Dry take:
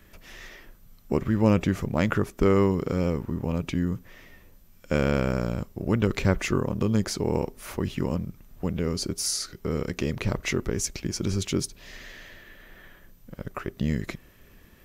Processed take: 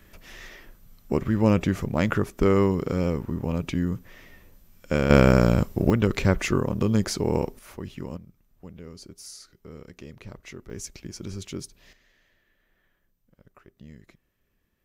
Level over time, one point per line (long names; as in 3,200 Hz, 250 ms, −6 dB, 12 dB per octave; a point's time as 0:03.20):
+0.5 dB
from 0:05.10 +9 dB
from 0:05.90 +1.5 dB
from 0:07.59 −8 dB
from 0:08.17 −15 dB
from 0:10.70 −8.5 dB
from 0:11.93 −20 dB